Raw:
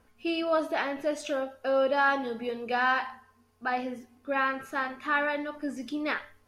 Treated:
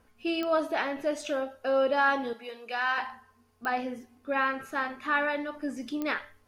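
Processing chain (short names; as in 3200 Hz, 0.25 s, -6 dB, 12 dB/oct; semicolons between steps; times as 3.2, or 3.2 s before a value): 2.33–2.98 HPF 1200 Hz 6 dB/oct; pops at 0.43/3.65/6.02, -20 dBFS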